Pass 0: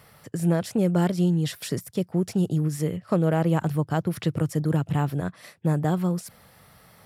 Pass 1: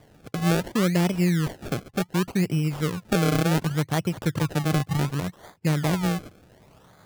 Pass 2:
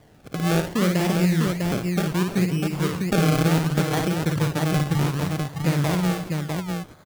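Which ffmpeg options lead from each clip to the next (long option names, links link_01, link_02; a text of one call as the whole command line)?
ffmpeg -i in.wav -af "acrusher=samples=32:mix=1:aa=0.000001:lfo=1:lforange=32:lforate=0.68" out.wav
ffmpeg -i in.wav -af "aecho=1:1:55|123|338|651:0.596|0.126|0.178|0.631" out.wav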